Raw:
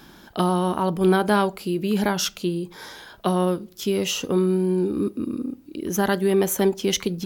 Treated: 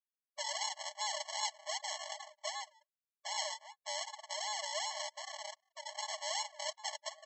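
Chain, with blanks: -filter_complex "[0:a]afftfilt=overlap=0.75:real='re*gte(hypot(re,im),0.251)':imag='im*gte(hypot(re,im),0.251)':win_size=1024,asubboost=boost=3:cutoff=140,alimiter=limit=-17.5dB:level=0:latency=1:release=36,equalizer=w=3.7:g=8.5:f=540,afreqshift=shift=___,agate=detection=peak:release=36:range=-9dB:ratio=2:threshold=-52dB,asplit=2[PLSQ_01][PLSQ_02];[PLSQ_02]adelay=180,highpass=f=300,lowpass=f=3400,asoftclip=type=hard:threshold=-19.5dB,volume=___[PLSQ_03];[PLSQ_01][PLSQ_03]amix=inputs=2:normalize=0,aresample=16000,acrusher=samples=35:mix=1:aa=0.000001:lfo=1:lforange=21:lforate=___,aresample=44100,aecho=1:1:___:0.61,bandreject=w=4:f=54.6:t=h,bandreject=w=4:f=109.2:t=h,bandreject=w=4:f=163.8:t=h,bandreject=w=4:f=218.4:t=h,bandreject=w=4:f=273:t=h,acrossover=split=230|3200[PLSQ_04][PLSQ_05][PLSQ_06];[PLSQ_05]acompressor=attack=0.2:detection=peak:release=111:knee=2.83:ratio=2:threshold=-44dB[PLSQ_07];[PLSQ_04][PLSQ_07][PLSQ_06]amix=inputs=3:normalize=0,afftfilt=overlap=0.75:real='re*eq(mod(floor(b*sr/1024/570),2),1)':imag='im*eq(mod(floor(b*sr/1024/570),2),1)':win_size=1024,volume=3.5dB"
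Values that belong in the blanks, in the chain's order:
-160, -21dB, 2.6, 3.5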